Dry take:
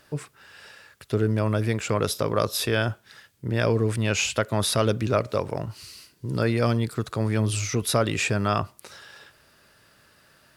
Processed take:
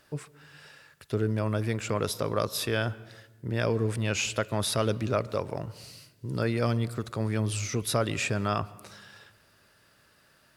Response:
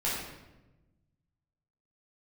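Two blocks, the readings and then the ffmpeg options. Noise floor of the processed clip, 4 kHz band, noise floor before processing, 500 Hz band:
-63 dBFS, -4.5 dB, -60 dBFS, -4.5 dB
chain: -filter_complex "[0:a]asplit=2[a][b];[1:a]atrim=start_sample=2205,highshelf=f=4.5k:g=-9.5,adelay=128[c];[b][c]afir=irnorm=-1:irlink=0,volume=-27dB[d];[a][d]amix=inputs=2:normalize=0,volume=-4.5dB"

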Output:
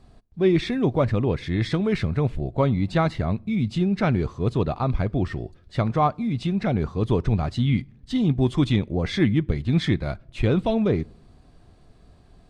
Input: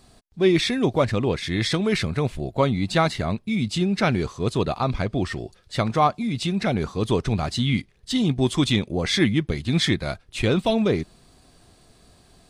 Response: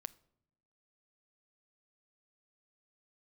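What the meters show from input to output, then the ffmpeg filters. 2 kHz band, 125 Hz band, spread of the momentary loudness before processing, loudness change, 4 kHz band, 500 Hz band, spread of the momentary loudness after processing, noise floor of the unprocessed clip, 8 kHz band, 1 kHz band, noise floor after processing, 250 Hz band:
-5.0 dB, +2.0 dB, 6 LU, -0.5 dB, -9.0 dB, -1.5 dB, 5 LU, -57 dBFS, under -10 dB, -2.5 dB, -54 dBFS, 0.0 dB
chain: -filter_complex "[0:a]lowpass=f=1.7k:p=1,lowshelf=f=120:g=8,asplit=2[a][b];[1:a]atrim=start_sample=2205[c];[b][c]afir=irnorm=-1:irlink=0,volume=-0.5dB[d];[a][d]amix=inputs=2:normalize=0,volume=-5.5dB"

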